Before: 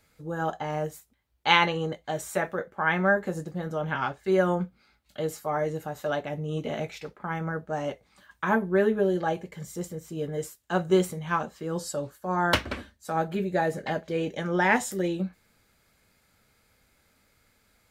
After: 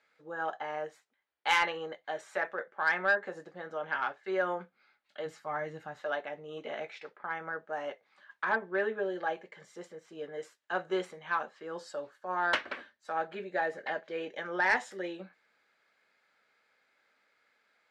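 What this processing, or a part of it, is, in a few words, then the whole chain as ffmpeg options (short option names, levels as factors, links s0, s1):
intercom: -filter_complex "[0:a]asplit=3[s0][s1][s2];[s0]afade=t=out:st=5.25:d=0.02[s3];[s1]asubboost=boost=7.5:cutoff=160,afade=t=in:st=5.25:d=0.02,afade=t=out:st=5.99:d=0.02[s4];[s2]afade=t=in:st=5.99:d=0.02[s5];[s3][s4][s5]amix=inputs=3:normalize=0,highpass=470,lowpass=3800,equalizer=f=1700:t=o:w=0.6:g=5,asoftclip=type=tanh:threshold=0.237,volume=0.596"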